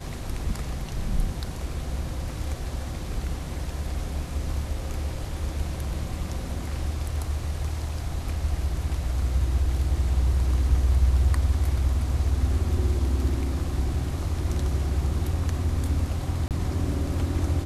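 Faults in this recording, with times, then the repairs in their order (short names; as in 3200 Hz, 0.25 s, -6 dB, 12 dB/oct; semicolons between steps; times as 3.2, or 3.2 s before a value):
7.89 gap 2.4 ms
16.48–16.51 gap 28 ms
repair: interpolate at 7.89, 2.4 ms; interpolate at 16.48, 28 ms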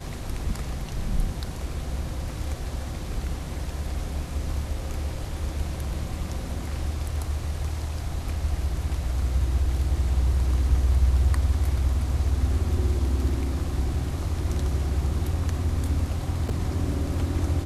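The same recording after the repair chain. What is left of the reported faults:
none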